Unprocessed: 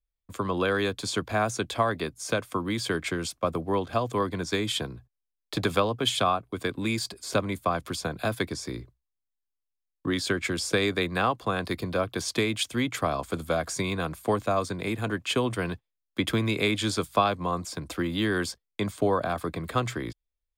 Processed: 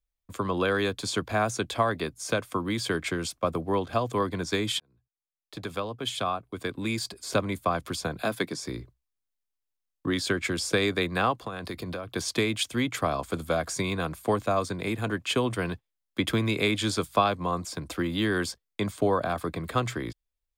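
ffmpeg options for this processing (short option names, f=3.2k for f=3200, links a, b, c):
-filter_complex "[0:a]asettb=1/sr,asplit=3[a][b][c];[a]atrim=end=8.224[d];[b]atrim=start=8.22:end=8.64,asetpts=PTS-STARTPTS,afade=t=in:d=0.004:c=qsin,afade=t=out:st=0.416:d=0.004:c=qsin,highpass=f=140:w=0.5412,highpass=f=140:w=1.3066[e];[c]atrim=start=8.636[f];[d][e]acrossfade=d=0.004:c1=hsin:c2=qsin[g];[g][f]acrossfade=d=0.004:c1=qsin:c2=hsin,asettb=1/sr,asplit=3[h][i][j];[h]atrim=end=11.394[k];[i]atrim=start=11.39:end=12.1,asetpts=PTS-STARTPTS,afade=t=in:d=0.004:c=qsin,afade=t=out:st=0.706:d=0.004:c=qsin,acompressor=threshold=-30dB:ratio=10:attack=3.2:release=140:knee=1:detection=peak[l];[j]atrim=start=12.096[m];[k][l]acrossfade=d=0.004:c1=hsin:c2=qsin[n];[n][m]acrossfade=d=0.004:c1=qsin:c2=hsin,asplit=2[o][p];[o]atrim=end=4.8,asetpts=PTS-STARTPTS,afade=t=out:st=4.796:d=0.004:c=hsin[q];[p]atrim=start=4.8,asetpts=PTS-STARTPTS,afade=t=in:d=2.54[r];[q][r]concat=n=2:v=0:a=1"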